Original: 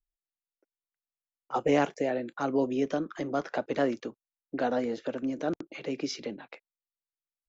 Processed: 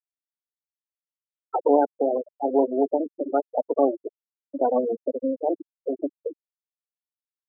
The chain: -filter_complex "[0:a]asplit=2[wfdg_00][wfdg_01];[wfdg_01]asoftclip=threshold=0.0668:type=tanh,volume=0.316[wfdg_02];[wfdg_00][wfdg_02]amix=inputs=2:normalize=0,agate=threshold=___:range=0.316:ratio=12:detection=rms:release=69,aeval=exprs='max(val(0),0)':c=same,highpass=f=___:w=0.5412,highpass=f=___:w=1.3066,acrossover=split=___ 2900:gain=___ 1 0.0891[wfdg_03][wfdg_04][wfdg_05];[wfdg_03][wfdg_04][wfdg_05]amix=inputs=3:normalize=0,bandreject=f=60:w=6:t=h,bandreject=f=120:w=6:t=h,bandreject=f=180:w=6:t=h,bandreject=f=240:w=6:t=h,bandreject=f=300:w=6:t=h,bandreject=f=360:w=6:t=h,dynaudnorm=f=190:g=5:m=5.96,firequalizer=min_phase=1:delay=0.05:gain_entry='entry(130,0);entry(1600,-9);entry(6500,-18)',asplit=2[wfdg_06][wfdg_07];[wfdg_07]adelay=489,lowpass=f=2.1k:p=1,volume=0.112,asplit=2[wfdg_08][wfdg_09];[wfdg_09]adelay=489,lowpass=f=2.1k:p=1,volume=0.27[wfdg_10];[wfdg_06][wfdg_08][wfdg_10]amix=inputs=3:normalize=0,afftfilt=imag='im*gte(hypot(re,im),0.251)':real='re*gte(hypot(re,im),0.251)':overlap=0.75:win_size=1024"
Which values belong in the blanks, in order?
0.00562, 130, 130, 290, 0.0708